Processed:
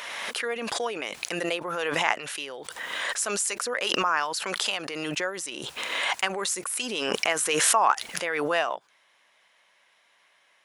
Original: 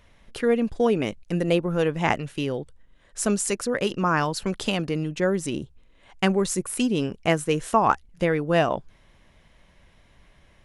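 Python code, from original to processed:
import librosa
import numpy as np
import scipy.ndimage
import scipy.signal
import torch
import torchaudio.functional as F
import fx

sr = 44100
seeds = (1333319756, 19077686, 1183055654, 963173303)

y = scipy.signal.sosfilt(scipy.signal.butter(2, 870.0, 'highpass', fs=sr, output='sos'), x)
y = fx.pre_swell(y, sr, db_per_s=21.0)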